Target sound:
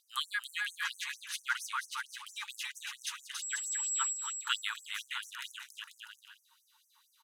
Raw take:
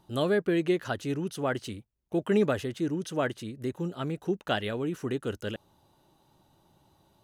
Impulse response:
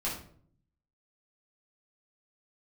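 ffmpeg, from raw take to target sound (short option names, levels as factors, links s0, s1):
-filter_complex "[0:a]asettb=1/sr,asplit=3[s0][s1][s2];[s0]atrim=end=3.424[s3];[s1]atrim=start=3.42:end=4.13,asetpts=PTS-STARTPTS,afade=t=in:d=0.004:c=qsin,afade=t=out:st=0.706:d=0.004:c=qsin,aeval=exprs='val(0)+0.01*sin(2*PI*7700*n/s)':c=same[s4];[s2]atrim=start=4.126[s5];[s3][s4]acrossfade=d=0.004:c1=hsin:c2=qsin[s6];[s6][s5]acrossfade=d=0.004:c1=qsin:c2=hsin,aecho=1:1:280|490|647.5|765.6|854.2:0.631|0.398|0.251|0.158|0.1,afftfilt=real='re*gte(b*sr/1024,840*pow(5700/840,0.5+0.5*sin(2*PI*4.4*pts/sr)))':imag='im*gte(b*sr/1024,840*pow(5700/840,0.5+0.5*sin(2*PI*4.4*pts/sr)))':win_size=1024:overlap=0.75,volume=1.5"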